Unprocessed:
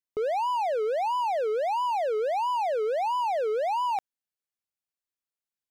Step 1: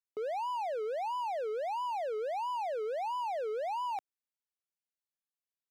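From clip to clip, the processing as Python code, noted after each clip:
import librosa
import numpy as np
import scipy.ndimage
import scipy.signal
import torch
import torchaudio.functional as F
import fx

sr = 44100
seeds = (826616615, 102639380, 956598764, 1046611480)

y = scipy.signal.sosfilt(scipy.signal.butter(2, 220.0, 'highpass', fs=sr, output='sos'), x)
y = y * 10.0 ** (-8.0 / 20.0)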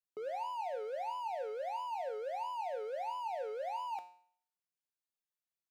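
y = fx.comb_fb(x, sr, f0_hz=180.0, decay_s=0.56, harmonics='all', damping=0.0, mix_pct=80)
y = y * 10.0 ** (7.0 / 20.0)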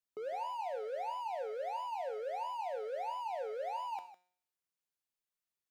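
y = x + 10.0 ** (-14.0 / 20.0) * np.pad(x, (int(155 * sr / 1000.0), 0))[:len(x)]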